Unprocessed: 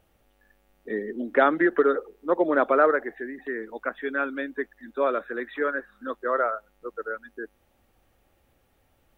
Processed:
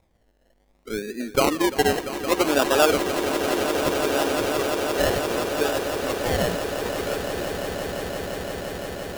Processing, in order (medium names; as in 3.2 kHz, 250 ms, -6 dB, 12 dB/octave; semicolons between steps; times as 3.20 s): distance through air 430 m; decimation with a swept rate 29×, swing 60% 0.65 Hz; on a send: echo with a slow build-up 172 ms, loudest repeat 8, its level -11.5 dB; on the sum: trim +1.5 dB